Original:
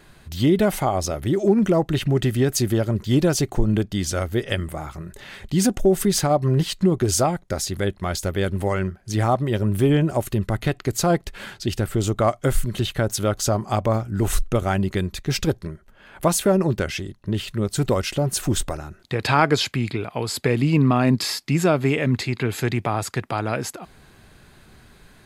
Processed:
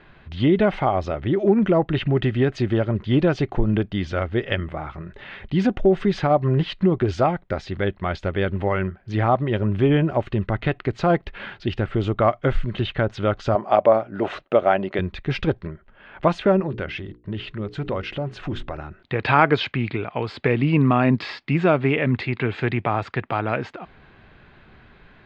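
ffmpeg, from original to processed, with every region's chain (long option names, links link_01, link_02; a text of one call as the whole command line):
ffmpeg -i in.wav -filter_complex "[0:a]asettb=1/sr,asplit=3[link_01][link_02][link_03];[link_01]atrim=end=13.554[link_04];[link_02]atrim=start=13.55:end=14.99,asetpts=PTS-STARTPTS,afade=type=in:duration=0.004:curve=qsin,afade=type=out:start_time=1.436:duration=0.004:curve=qsin,highpass=250,lowpass=7800,equalizer=frequency=620:width=2.4:gain=9.5[link_05];[link_03]atrim=start=14.986[link_06];[link_04][link_05]acrossfade=duration=0.004:curve1=hsin:curve2=qsin[link_07];[link_07][link_06]acrossfade=duration=0.004:curve1=qsin:curve2=hsin,asettb=1/sr,asplit=3[link_08][link_09][link_10];[link_08]atrim=end=16.604[link_11];[link_09]atrim=start=16.6:end=18.78,asetpts=PTS-STARTPTS,afade=type=in:duration=0.004:curve=qsin,afade=type=out:start_time=2.176:duration=0.004:curve=qsin,agate=range=-33dB:threshold=-46dB:ratio=3:release=100:detection=peak,bandreject=frequency=60:width_type=h:width=6,bandreject=frequency=120:width_type=h:width=6,bandreject=frequency=180:width_type=h:width=6,bandreject=frequency=240:width_type=h:width=6,bandreject=frequency=300:width_type=h:width=6,bandreject=frequency=360:width_type=h:width=6,bandreject=frequency=420:width_type=h:width=6,bandreject=frequency=480:width_type=h:width=6,acompressor=threshold=-31dB:ratio=1.5:attack=3.2:release=140:knee=1:detection=peak[link_12];[link_10]atrim=start=18.776[link_13];[link_11][link_12]acrossfade=duration=0.004:curve1=hsin:curve2=qsin[link_14];[link_14][link_13]acrossfade=duration=0.004:curve1=qsin:curve2=hsin,lowpass=frequency=3100:width=0.5412,lowpass=frequency=3100:width=1.3066,lowshelf=frequency=470:gain=-3.5,volume=2.5dB" out.wav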